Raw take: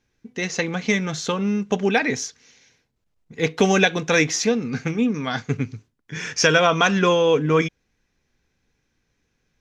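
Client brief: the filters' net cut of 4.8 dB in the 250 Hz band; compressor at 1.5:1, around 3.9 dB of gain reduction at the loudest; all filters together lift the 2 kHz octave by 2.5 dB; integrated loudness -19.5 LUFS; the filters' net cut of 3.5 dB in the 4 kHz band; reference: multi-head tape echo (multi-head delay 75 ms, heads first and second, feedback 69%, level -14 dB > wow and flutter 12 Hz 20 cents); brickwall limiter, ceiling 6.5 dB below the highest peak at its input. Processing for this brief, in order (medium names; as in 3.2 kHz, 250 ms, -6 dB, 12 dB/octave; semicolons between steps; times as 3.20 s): peaking EQ 250 Hz -7 dB; peaking EQ 2 kHz +5 dB; peaking EQ 4 kHz -6.5 dB; compression 1.5:1, threshold -22 dBFS; peak limiter -13 dBFS; multi-head delay 75 ms, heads first and second, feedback 69%, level -14 dB; wow and flutter 12 Hz 20 cents; trim +5.5 dB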